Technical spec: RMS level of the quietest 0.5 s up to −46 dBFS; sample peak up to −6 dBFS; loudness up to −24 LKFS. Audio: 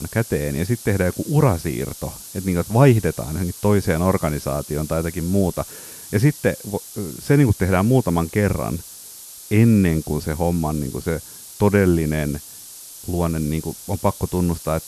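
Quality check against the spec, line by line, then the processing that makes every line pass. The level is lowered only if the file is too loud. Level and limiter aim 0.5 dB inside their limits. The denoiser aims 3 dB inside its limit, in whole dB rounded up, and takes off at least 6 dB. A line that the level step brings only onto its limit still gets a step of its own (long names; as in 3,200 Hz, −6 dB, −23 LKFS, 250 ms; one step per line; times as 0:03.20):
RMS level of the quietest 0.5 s −39 dBFS: out of spec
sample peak −1.5 dBFS: out of spec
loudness −20.5 LKFS: out of spec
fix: broadband denoise 6 dB, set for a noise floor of −39 dBFS
level −4 dB
brickwall limiter −6.5 dBFS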